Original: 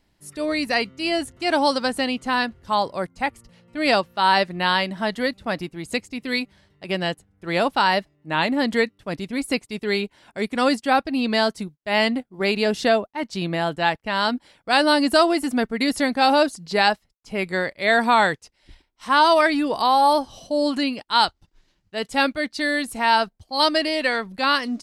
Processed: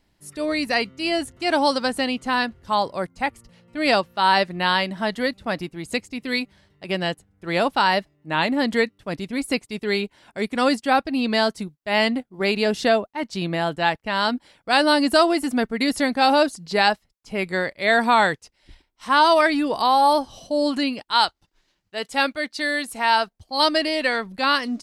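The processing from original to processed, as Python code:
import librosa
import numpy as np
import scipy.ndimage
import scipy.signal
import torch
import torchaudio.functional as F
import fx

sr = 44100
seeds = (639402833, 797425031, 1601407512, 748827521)

y = fx.low_shelf(x, sr, hz=250.0, db=-10.0, at=(21.11, 23.38))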